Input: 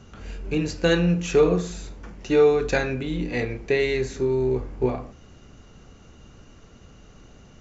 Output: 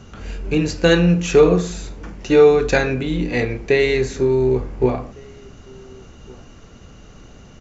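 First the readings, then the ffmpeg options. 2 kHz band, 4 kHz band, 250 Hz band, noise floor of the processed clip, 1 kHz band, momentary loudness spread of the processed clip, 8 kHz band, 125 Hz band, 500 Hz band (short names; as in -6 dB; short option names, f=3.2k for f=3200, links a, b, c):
+6.0 dB, +6.0 dB, +6.0 dB, -43 dBFS, +6.0 dB, 20 LU, n/a, +6.0 dB, +6.0 dB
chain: -filter_complex "[0:a]asplit=2[a][b];[b]adelay=1458,volume=-25dB,highshelf=f=4k:g=-32.8[c];[a][c]amix=inputs=2:normalize=0,volume=6dB"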